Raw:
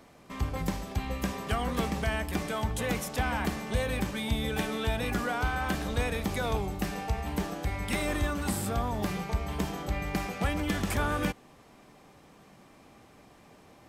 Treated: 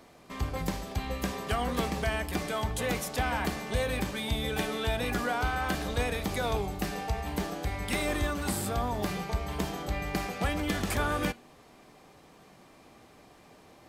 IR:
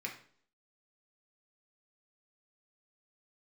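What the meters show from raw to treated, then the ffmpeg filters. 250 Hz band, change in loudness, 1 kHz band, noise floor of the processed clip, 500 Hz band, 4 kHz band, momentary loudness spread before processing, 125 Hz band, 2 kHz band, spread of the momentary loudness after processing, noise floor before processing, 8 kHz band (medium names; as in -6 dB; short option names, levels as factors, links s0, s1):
-1.5 dB, 0.0 dB, +0.5 dB, -56 dBFS, +1.0 dB, +1.5 dB, 4 LU, -1.5 dB, +0.5 dB, 5 LU, -56 dBFS, +1.0 dB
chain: -filter_complex "[0:a]asplit=2[s0][s1];[1:a]atrim=start_sample=2205,asetrate=83790,aresample=44100[s2];[s1][s2]afir=irnorm=-1:irlink=0,volume=0.562[s3];[s0][s3]amix=inputs=2:normalize=0"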